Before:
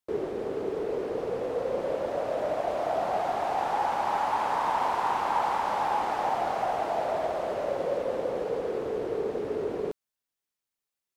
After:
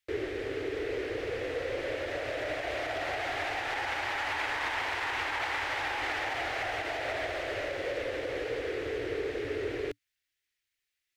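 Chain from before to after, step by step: limiter -21 dBFS, peak gain reduction 5.5 dB; EQ curve 110 Hz 0 dB, 200 Hz -27 dB, 290 Hz -6 dB, 1000 Hz -15 dB, 1900 Hz +7 dB, 10000 Hz -6 dB; gain +5.5 dB

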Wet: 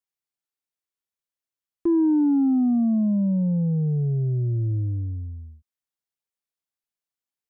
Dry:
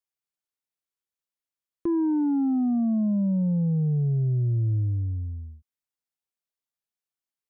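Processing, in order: dynamic EQ 330 Hz, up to +6 dB, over -38 dBFS, Q 0.76; gain -1.5 dB

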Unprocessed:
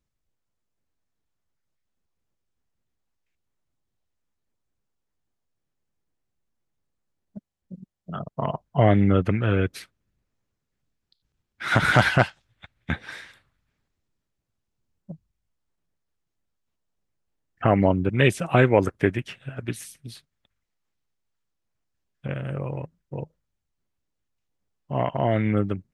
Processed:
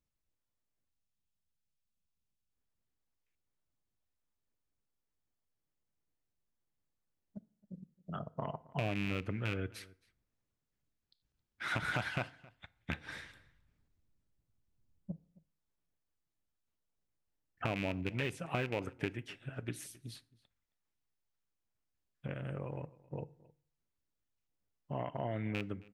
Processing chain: rattling part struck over -19 dBFS, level -10 dBFS; 0.89–2.51 spectral gain 250–2400 Hz -8 dB; 13.05–15.12 low shelf 270 Hz +10.5 dB; compressor 3:1, threshold -28 dBFS, peak gain reduction 13 dB; outdoor echo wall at 46 m, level -22 dB; FDN reverb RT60 0.56 s, low-frequency decay 1×, high-frequency decay 0.65×, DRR 16.5 dB; gain -7.5 dB

